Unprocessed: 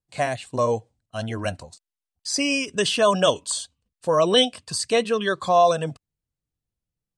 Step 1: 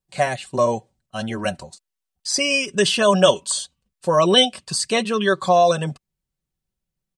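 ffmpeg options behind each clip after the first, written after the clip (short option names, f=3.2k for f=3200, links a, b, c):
-af "aecho=1:1:5.3:0.56,volume=2.5dB"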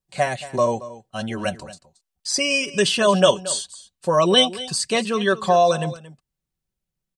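-af "aecho=1:1:227:0.15,volume=-1dB"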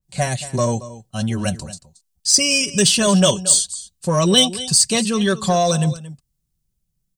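-filter_complex "[0:a]bass=f=250:g=14,treble=f=4k:g=10,asplit=2[a][b];[b]asoftclip=type=hard:threshold=-14dB,volume=-9.5dB[c];[a][c]amix=inputs=2:normalize=0,adynamicequalizer=threshold=0.0316:dfrequency=3200:dqfactor=0.7:tfrequency=3200:tqfactor=0.7:attack=5:release=100:ratio=0.375:range=2.5:mode=boostabove:tftype=highshelf,volume=-4.5dB"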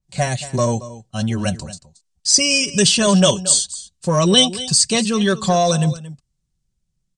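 -af "lowpass=f=8.5k:w=0.5412,lowpass=f=8.5k:w=1.3066,volume=1dB"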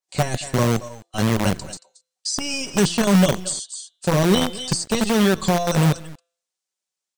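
-filter_complex "[0:a]bandreject=f=170.7:t=h:w=4,bandreject=f=341.4:t=h:w=4,bandreject=f=512.1:t=h:w=4,bandreject=f=682.8:t=h:w=4,bandreject=f=853.5:t=h:w=4,bandreject=f=1.0242k:t=h:w=4,bandreject=f=1.1949k:t=h:w=4,bandreject=f=1.3656k:t=h:w=4,bandreject=f=1.5363k:t=h:w=4,bandreject=f=1.707k:t=h:w=4,bandreject=f=1.8777k:t=h:w=4,bandreject=f=2.0484k:t=h:w=4,bandreject=f=2.2191k:t=h:w=4,bandreject=f=2.3898k:t=h:w=4,bandreject=f=2.5605k:t=h:w=4,bandreject=f=2.7312k:t=h:w=4,bandreject=f=2.9019k:t=h:w=4,bandreject=f=3.0726k:t=h:w=4,bandreject=f=3.2433k:t=h:w=4,bandreject=f=3.414k:t=h:w=4,bandreject=f=3.5847k:t=h:w=4,bandreject=f=3.7554k:t=h:w=4,bandreject=f=3.9261k:t=h:w=4,bandreject=f=4.0968k:t=h:w=4,bandreject=f=4.2675k:t=h:w=4,acrossover=split=450[a][b];[a]acrusher=bits=4:dc=4:mix=0:aa=0.000001[c];[b]acompressor=threshold=-25dB:ratio=6[d];[c][d]amix=inputs=2:normalize=0"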